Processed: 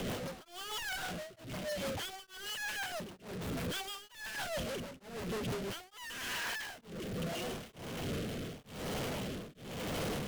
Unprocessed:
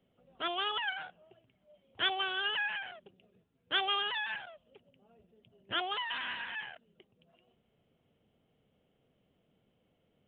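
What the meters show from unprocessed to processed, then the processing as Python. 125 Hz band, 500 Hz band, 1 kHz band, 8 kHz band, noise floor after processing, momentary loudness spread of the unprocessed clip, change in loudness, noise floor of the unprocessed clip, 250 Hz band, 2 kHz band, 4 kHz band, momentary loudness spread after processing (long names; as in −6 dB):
+23.0 dB, +7.0 dB, −5.5 dB, can't be measured, −59 dBFS, 12 LU, −6.0 dB, −75 dBFS, +12.5 dB, −4.5 dB, −6.0 dB, 7 LU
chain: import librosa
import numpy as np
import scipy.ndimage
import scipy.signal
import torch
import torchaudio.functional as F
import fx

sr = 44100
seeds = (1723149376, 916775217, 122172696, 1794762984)

p1 = np.sign(x) * np.sqrt(np.mean(np.square(x)))
p2 = fx.rotary_switch(p1, sr, hz=6.3, then_hz=0.85, switch_at_s=5.41)
p3 = (np.mod(10.0 ** (35.5 / 20.0) * p2 + 1.0, 2.0) - 1.0) / 10.0 ** (35.5 / 20.0)
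p4 = p2 + F.gain(torch.from_numpy(p3), -7.0).numpy()
p5 = p4 * np.abs(np.cos(np.pi * 1.1 * np.arange(len(p4)) / sr))
y = F.gain(torch.from_numpy(p5), 2.0).numpy()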